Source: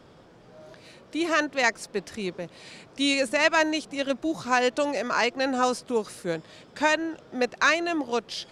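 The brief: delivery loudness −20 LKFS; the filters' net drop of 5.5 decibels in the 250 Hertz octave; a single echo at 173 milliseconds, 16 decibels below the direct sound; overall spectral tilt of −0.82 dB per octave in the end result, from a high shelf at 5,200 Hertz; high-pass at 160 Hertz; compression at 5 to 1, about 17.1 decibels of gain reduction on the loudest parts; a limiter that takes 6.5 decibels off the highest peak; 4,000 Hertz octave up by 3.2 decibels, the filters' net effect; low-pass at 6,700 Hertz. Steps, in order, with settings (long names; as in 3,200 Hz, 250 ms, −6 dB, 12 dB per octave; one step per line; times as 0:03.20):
high-pass filter 160 Hz
low-pass filter 6,700 Hz
parametric band 250 Hz −6.5 dB
parametric band 4,000 Hz +8 dB
high-shelf EQ 5,200 Hz −9 dB
downward compressor 5 to 1, threshold −36 dBFS
brickwall limiter −28 dBFS
single-tap delay 173 ms −16 dB
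level +20.5 dB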